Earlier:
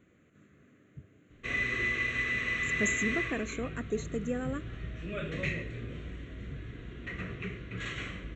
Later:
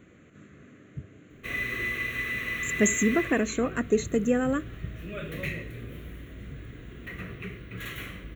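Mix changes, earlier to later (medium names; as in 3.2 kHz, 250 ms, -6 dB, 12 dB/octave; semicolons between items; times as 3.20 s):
speech +9.5 dB; background: remove brick-wall FIR low-pass 8.1 kHz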